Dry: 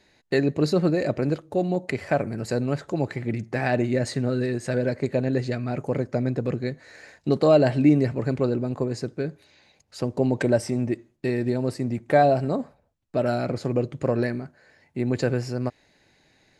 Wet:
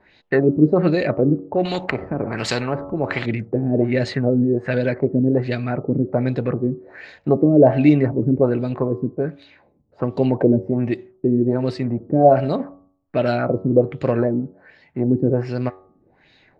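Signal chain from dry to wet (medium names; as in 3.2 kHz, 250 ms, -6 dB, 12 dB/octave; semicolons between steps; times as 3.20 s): LFO low-pass sine 1.3 Hz 260–3800 Hz; de-hum 93.98 Hz, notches 14; 1.65–3.26 s: spectrum-flattening compressor 2:1; trim +4 dB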